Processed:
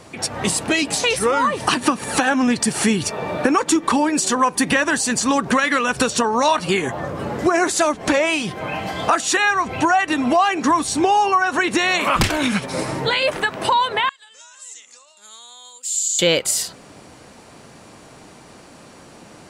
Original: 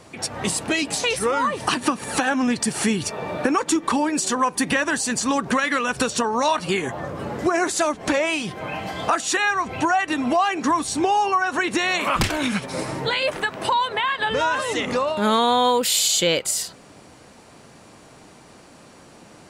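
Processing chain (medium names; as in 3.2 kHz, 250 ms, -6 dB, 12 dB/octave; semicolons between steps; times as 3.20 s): 14.09–16.19 s: band-pass filter 7.3 kHz, Q 5.7; trim +3.5 dB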